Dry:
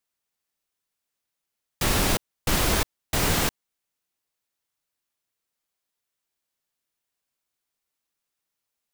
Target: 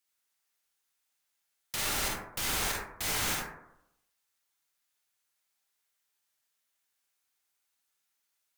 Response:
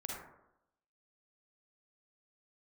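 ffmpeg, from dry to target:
-filter_complex "[0:a]tiltshelf=f=870:g=-6.5,alimiter=limit=0.112:level=0:latency=1:release=461[s0];[1:a]atrim=start_sample=2205[s1];[s0][s1]afir=irnorm=-1:irlink=0,asetrate=45938,aresample=44100"

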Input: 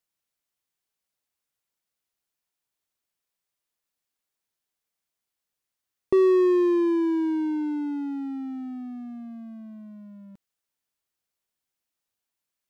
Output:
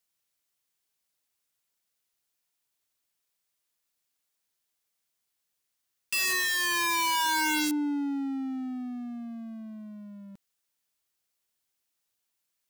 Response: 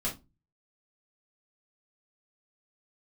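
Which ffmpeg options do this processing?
-af "highshelf=f=2300:g=5.5,aeval=exprs='(mod(13.3*val(0)+1,2)-1)/13.3':c=same"

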